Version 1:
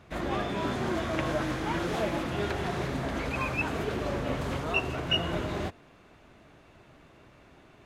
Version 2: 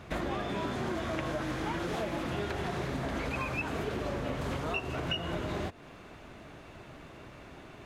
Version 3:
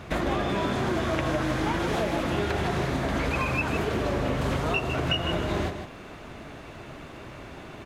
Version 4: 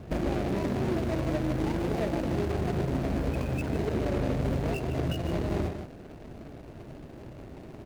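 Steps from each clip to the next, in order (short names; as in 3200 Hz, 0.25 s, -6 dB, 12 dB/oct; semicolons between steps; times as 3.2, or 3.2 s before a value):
compressor 6:1, threshold -38 dBFS, peak gain reduction 15.5 dB; gain +6.5 dB
echo 0.154 s -8 dB; gain +6.5 dB
median filter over 41 samples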